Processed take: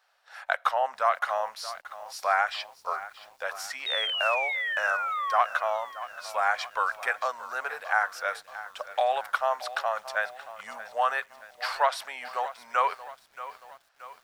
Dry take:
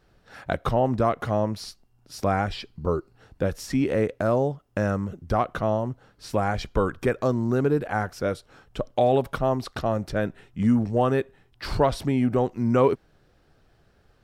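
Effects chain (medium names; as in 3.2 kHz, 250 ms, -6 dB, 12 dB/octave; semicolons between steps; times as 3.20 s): inverse Chebyshev high-pass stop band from 350 Hz, stop band 40 dB; dynamic bell 1.6 kHz, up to +7 dB, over -44 dBFS, Q 1.2; painted sound fall, 3.86–5.41 s, 1–3.8 kHz -30 dBFS; bit-crushed delay 627 ms, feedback 55%, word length 8-bit, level -14.5 dB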